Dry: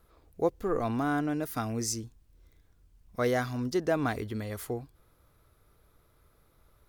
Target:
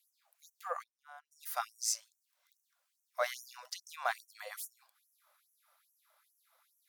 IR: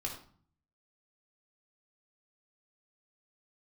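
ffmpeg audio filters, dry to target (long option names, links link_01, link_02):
-filter_complex "[0:a]asplit=3[link_01][link_02][link_03];[link_01]afade=type=out:start_time=0.82:duration=0.02[link_04];[link_02]agate=range=-30dB:threshold=-24dB:ratio=16:detection=peak,afade=type=in:start_time=0.82:duration=0.02,afade=type=out:start_time=1.31:duration=0.02[link_05];[link_03]afade=type=in:start_time=1.31:duration=0.02[link_06];[link_04][link_05][link_06]amix=inputs=3:normalize=0,afftfilt=real='re*gte(b*sr/1024,510*pow(5700/510,0.5+0.5*sin(2*PI*2.4*pts/sr)))':imag='im*gte(b*sr/1024,510*pow(5700/510,0.5+0.5*sin(2*PI*2.4*pts/sr)))':win_size=1024:overlap=0.75"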